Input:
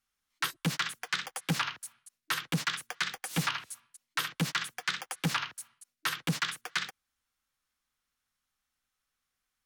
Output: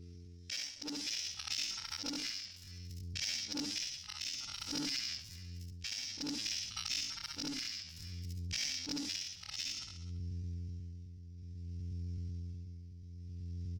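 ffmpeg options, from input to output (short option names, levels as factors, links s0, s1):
-filter_complex "[0:a]afftfilt=real='re':imag='-im':win_size=4096:overlap=0.75,equalizer=f=82:w=7.8:g=9.5,asplit=2[s0][s1];[s1]aecho=0:1:86|172:0.112|0.0281[s2];[s0][s2]amix=inputs=2:normalize=0,aeval=exprs='val(0)+0.000562*(sin(2*PI*50*n/s)+sin(2*PI*2*50*n/s)/2+sin(2*PI*3*50*n/s)/3+sin(2*PI*4*50*n/s)/4+sin(2*PI*5*50*n/s)/5)':c=same,lowpass=f=3100:t=q:w=6.1,asplit=2[s3][s4];[s4]volume=37.6,asoftclip=hard,volume=0.0266,volume=0.562[s5];[s3][s5]amix=inputs=2:normalize=0,tremolo=f=0.82:d=0.7,atempo=0.7,acompressor=threshold=0.002:ratio=3,asetrate=76340,aresample=44100,atempo=0.577676,asubboost=boost=5.5:cutoff=160,volume=3.55"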